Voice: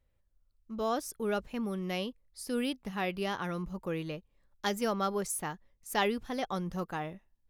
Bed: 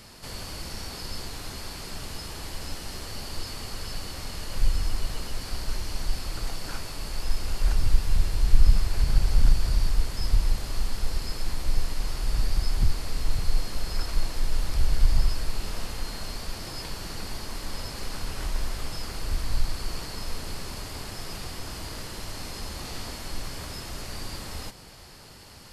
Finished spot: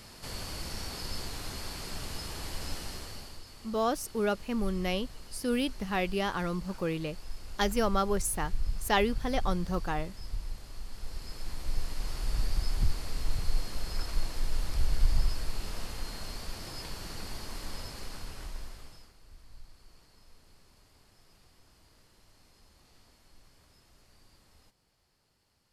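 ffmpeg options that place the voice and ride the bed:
ffmpeg -i stem1.wav -i stem2.wav -filter_complex "[0:a]adelay=2950,volume=3dB[link_01];[1:a]volume=7.5dB,afade=type=out:start_time=2.78:duration=0.63:silence=0.237137,afade=type=in:start_time=10.85:duration=1.35:silence=0.334965,afade=type=out:start_time=17.66:duration=1.48:silence=0.0944061[link_02];[link_01][link_02]amix=inputs=2:normalize=0" out.wav

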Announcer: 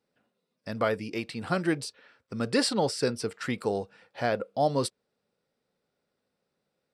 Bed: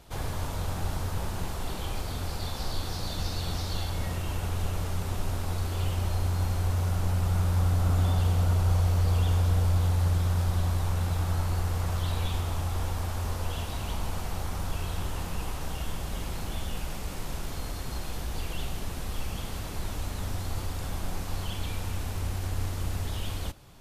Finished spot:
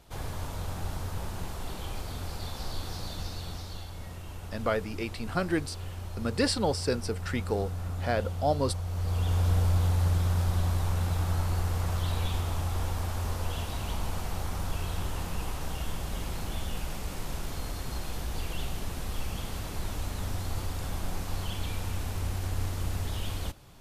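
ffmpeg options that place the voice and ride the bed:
ffmpeg -i stem1.wav -i stem2.wav -filter_complex "[0:a]adelay=3850,volume=-1.5dB[link_01];[1:a]volume=6dB,afade=type=out:start_time=2.97:duration=0.9:silence=0.473151,afade=type=in:start_time=8.86:duration=0.63:silence=0.334965[link_02];[link_01][link_02]amix=inputs=2:normalize=0" out.wav

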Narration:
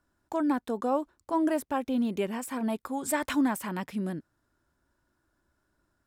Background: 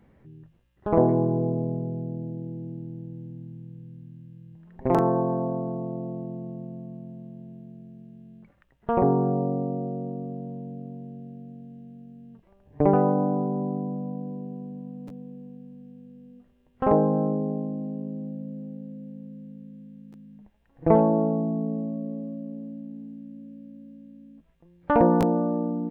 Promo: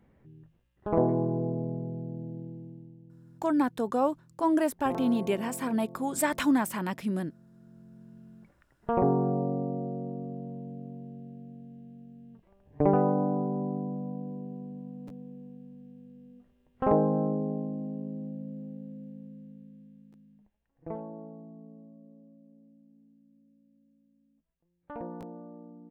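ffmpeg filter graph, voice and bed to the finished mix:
ffmpeg -i stem1.wav -i stem2.wav -filter_complex "[0:a]adelay=3100,volume=1.5dB[link_01];[1:a]volume=6dB,afade=type=out:start_time=2.37:duration=0.61:silence=0.334965,afade=type=in:start_time=7.5:duration=0.68:silence=0.281838,afade=type=out:start_time=19.01:duration=1.96:silence=0.133352[link_02];[link_01][link_02]amix=inputs=2:normalize=0" out.wav

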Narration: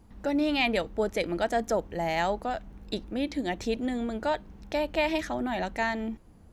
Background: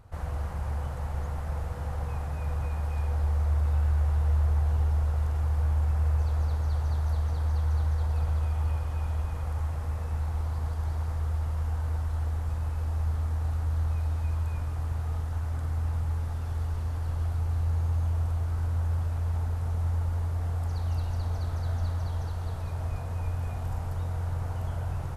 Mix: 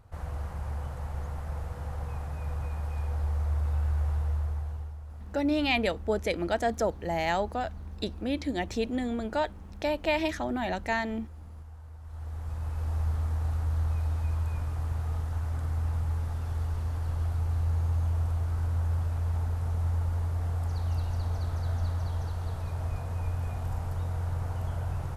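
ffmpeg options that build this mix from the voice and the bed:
ffmpeg -i stem1.wav -i stem2.wav -filter_complex "[0:a]adelay=5100,volume=-0.5dB[link_01];[1:a]volume=13dB,afade=type=out:start_time=4.11:duration=0.86:silence=0.211349,afade=type=in:start_time=12:duration=0.94:silence=0.158489[link_02];[link_01][link_02]amix=inputs=2:normalize=0" out.wav

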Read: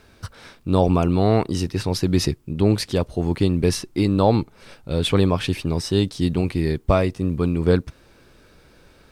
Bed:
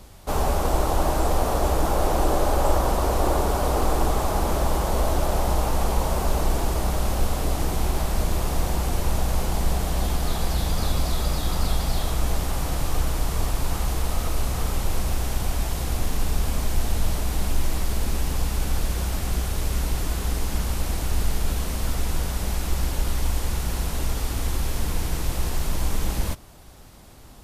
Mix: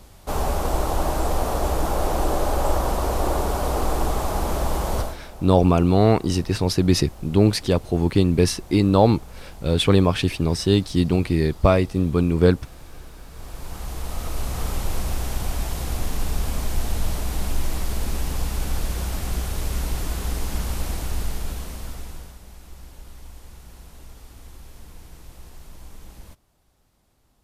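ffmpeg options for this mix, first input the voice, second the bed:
ffmpeg -i stem1.wav -i stem2.wav -filter_complex "[0:a]adelay=4750,volume=1.5dB[link_01];[1:a]volume=16dB,afade=type=out:start_time=4.95:duration=0.22:silence=0.141254,afade=type=in:start_time=13.3:duration=1.38:silence=0.141254,afade=type=out:start_time=20.83:duration=1.57:silence=0.141254[link_02];[link_01][link_02]amix=inputs=2:normalize=0" out.wav

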